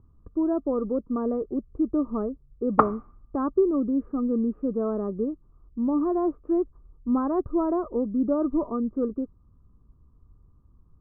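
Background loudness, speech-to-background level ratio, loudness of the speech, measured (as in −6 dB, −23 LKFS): −26.0 LKFS, −1.5 dB, −27.5 LKFS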